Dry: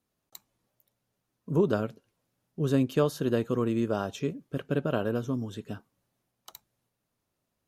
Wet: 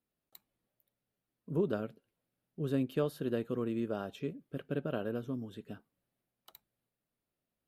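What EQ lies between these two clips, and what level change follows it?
fifteen-band graphic EQ 100 Hz -5 dB, 1 kHz -5 dB, 6.3 kHz -12 dB; -6.5 dB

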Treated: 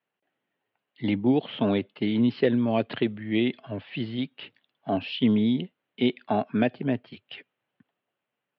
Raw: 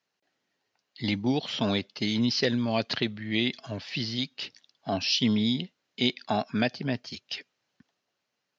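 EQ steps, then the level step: dynamic bell 350 Hz, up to +7 dB, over -39 dBFS, Q 0.82; elliptic band-pass 100–3200 Hz, stop band 40 dB; distance through air 190 m; 0.0 dB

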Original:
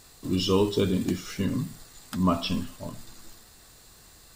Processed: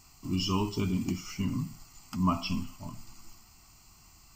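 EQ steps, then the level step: static phaser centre 2.5 kHz, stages 8; -1.5 dB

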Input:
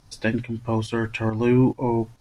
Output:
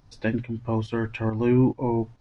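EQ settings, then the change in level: tape spacing loss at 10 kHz 27 dB; treble shelf 4.8 kHz +10.5 dB; -1.0 dB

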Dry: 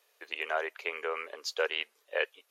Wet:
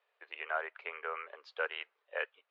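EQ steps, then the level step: dynamic bell 1.4 kHz, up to +5 dB, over -49 dBFS, Q 3; band-pass 600–7500 Hz; distance through air 440 m; -2.0 dB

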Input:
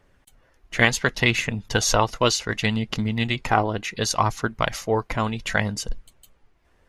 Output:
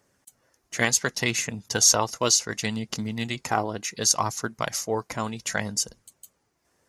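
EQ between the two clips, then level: high-pass 120 Hz 12 dB/octave; resonant high shelf 4.4 kHz +9.5 dB, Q 1.5; -4.5 dB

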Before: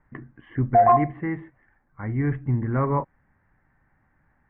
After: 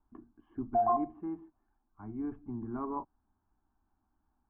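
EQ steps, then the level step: low-pass 1.1 kHz 6 dB/octave; static phaser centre 520 Hz, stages 6; -8.0 dB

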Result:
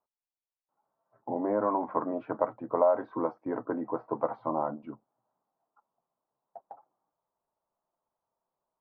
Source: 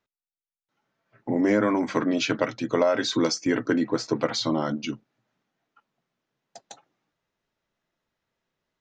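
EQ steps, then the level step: four-pole ladder low-pass 1.2 kHz, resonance 50%; peaking EQ 720 Hz +10.5 dB 1.5 oct; -4.0 dB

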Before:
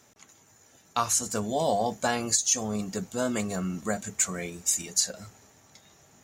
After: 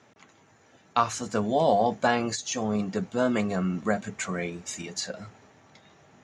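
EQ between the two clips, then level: high-pass 100 Hz; low-pass 3.1 kHz 12 dB/octave; +4.0 dB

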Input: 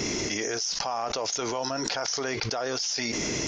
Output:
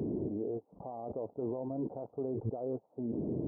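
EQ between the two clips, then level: Gaussian low-pass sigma 16 samples; high-pass 88 Hz; 0.0 dB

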